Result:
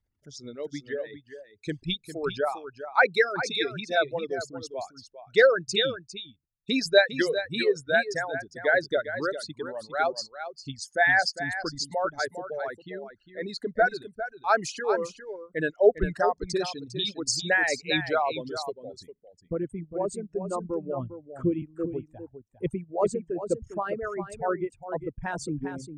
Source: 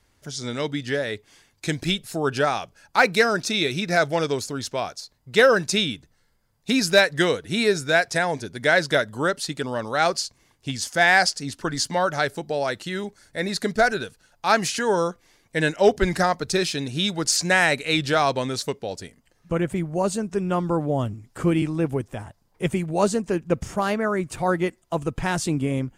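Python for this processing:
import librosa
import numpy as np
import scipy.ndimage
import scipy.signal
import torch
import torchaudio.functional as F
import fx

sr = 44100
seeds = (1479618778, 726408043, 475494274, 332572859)

y = fx.envelope_sharpen(x, sr, power=2.0)
y = fx.lowpass(y, sr, hz=2800.0, slope=12, at=(12.69, 13.42))
y = fx.dereverb_blind(y, sr, rt60_s=1.7)
y = y + 10.0 ** (-7.5 / 20.0) * np.pad(y, (int(403 * sr / 1000.0), 0))[:len(y)]
y = fx.upward_expand(y, sr, threshold_db=-40.0, expansion=1.5)
y = y * librosa.db_to_amplitude(-1.0)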